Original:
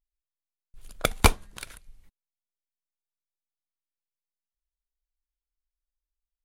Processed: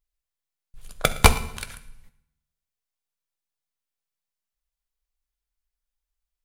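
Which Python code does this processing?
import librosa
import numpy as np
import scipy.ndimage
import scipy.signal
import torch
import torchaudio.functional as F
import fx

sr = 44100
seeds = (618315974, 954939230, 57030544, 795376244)

y = fx.peak_eq(x, sr, hz=310.0, db=-5.5, octaves=0.73)
y = y + 10.0 ** (-21.5 / 20.0) * np.pad(y, (int(113 * sr / 1000.0), 0))[:len(y)]
y = fx.rev_fdn(y, sr, rt60_s=0.81, lf_ratio=1.25, hf_ratio=0.9, size_ms=40.0, drr_db=10.0)
y = y * librosa.db_to_amplitude(4.0)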